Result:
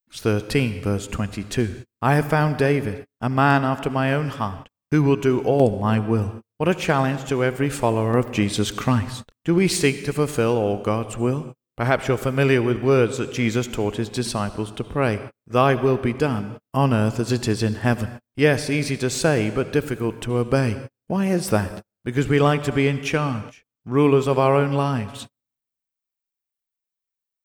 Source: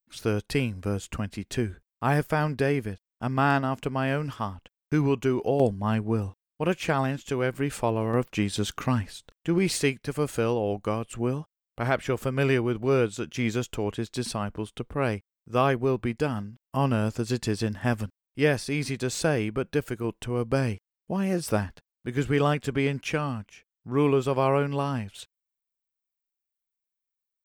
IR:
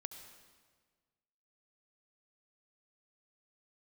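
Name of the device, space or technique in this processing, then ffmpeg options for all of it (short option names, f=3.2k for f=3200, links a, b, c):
keyed gated reverb: -filter_complex "[0:a]asplit=3[a][b][c];[1:a]atrim=start_sample=2205[d];[b][d]afir=irnorm=-1:irlink=0[e];[c]apad=whole_len=1210449[f];[e][f]sidechaingate=range=-49dB:threshold=-44dB:ratio=16:detection=peak,volume=3.5dB[g];[a][g]amix=inputs=2:normalize=0"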